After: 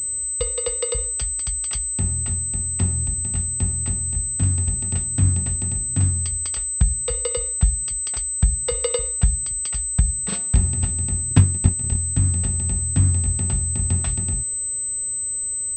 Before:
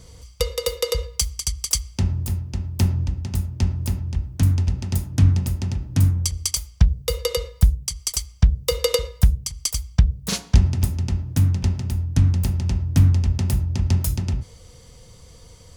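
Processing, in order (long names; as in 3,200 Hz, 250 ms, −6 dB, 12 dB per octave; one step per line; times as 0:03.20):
0:11.29–0:11.97: transient designer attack +11 dB, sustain −10 dB
switching amplifier with a slow clock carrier 8,100 Hz
level −3 dB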